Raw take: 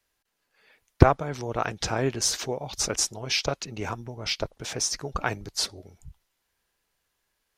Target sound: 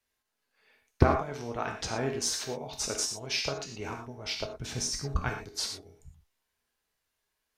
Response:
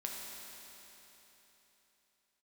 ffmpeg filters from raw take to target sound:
-filter_complex "[0:a]asplit=3[link_01][link_02][link_03];[link_01]afade=type=out:start_time=4.55:duration=0.02[link_04];[link_02]asubboost=boost=4.5:cutoff=220,afade=type=in:start_time=4.55:duration=0.02,afade=type=out:start_time=5.28:duration=0.02[link_05];[link_03]afade=type=in:start_time=5.28:duration=0.02[link_06];[link_04][link_05][link_06]amix=inputs=3:normalize=0[link_07];[1:a]atrim=start_sample=2205,atrim=end_sample=6174,asetrate=48510,aresample=44100[link_08];[link_07][link_08]afir=irnorm=-1:irlink=0,volume=-2.5dB"

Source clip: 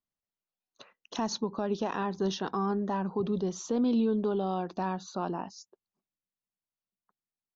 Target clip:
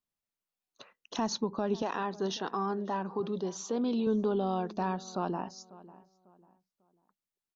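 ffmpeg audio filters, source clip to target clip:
ffmpeg -i in.wav -filter_complex "[0:a]asettb=1/sr,asplit=3[link_01][link_02][link_03];[link_01]atrim=end=1.824[link_04];[link_02]atrim=start=1.82:end=4.07,asetpts=PTS-STARTPTS,afade=type=in:duration=0.004:curve=qsin,afade=type=out:start_time=2.246:duration=0.004:curve=qsin,highpass=frequency=320:poles=1[link_05];[link_03]atrim=start=4.066[link_06];[link_04][link_05]acrossfade=duration=0.004:curve1=hsin:curve2=qsin[link_07];[link_07][link_06]acrossfade=duration=0.004:curve1=qsin:curve2=hsin,asplit=2[link_08][link_09];[link_09]adelay=546,lowpass=frequency=1900:poles=1,volume=-19dB,asplit=2[link_10][link_11];[link_11]adelay=546,lowpass=frequency=1900:poles=1,volume=0.33,asplit=2[link_12][link_13];[link_13]adelay=546,lowpass=frequency=1900:poles=1,volume=0.33[link_14];[link_08][link_10][link_12][link_14]amix=inputs=4:normalize=0" out.wav

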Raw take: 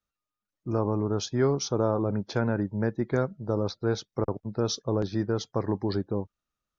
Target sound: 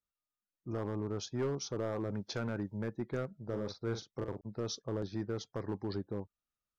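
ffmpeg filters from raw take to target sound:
ffmpeg -i in.wav -filter_complex "[0:a]asettb=1/sr,asplit=3[link_01][link_02][link_03];[link_01]atrim=end=1.924[link_04];[link_02]atrim=start=1.92:end=2.78,asetpts=PTS-STARTPTS,afade=type=in:duration=0.004:curve=qsin,afade=type=out:start_time=0.856:duration=0.004:curve=qsin,highshelf=frequency=2900:gain=10[link_05];[link_03]atrim=start=2.776[link_06];[link_04][link_05]acrossfade=duration=0.004:curve1=hsin:curve2=qsin[link_07];[link_07][link_06]acrossfade=duration=0.004:curve1=qsin:curve2=hsin,asoftclip=type=hard:threshold=-19.5dB,asettb=1/sr,asplit=3[link_08][link_09][link_10];[link_08]atrim=end=3.434[link_11];[link_09]atrim=start=3.43:end=4.41,asetpts=PTS-STARTPTS,afade=type=in:duration=0.004:curve=qsin,afade=type=out:start_time=0.976:duration=0.004:curve=qsin,asplit=2[link_12][link_13];[link_13]adelay=43,volume=-8dB[link_14];[link_12][link_14]amix=inputs=2:normalize=0,atrim=end_sample=43218[link_15];[link_10]atrim=start=4.406[link_16];[link_11][link_15]acrossfade=duration=0.004:curve1=hsin:curve2=qsin[link_17];[link_17][link_16]acrossfade=duration=0.004:curve1=qsin:curve2=hsin,volume=-9dB" out.wav

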